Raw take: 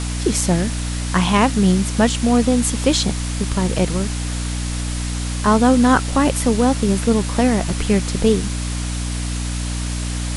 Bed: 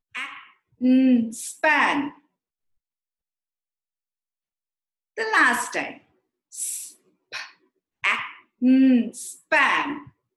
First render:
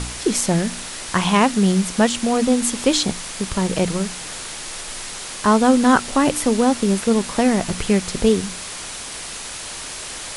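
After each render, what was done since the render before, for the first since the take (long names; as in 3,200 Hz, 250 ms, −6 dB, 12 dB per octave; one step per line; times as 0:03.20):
hum removal 60 Hz, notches 5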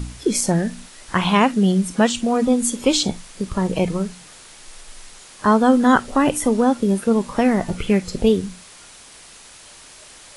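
noise reduction from a noise print 12 dB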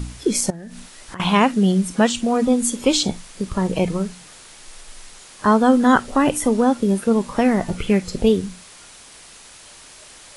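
0:00.50–0:01.20: downward compressor 12 to 1, threshold −31 dBFS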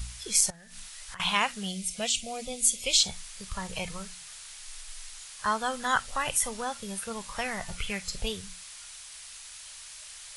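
0:01.69–0:02.99: gain on a spectral selection 770–2,000 Hz −13 dB
guitar amp tone stack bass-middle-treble 10-0-10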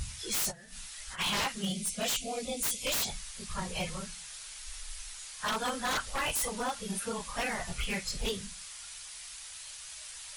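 random phases in long frames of 50 ms
wave folding −25.5 dBFS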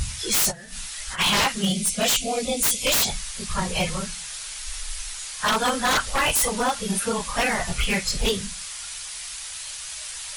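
level +10.5 dB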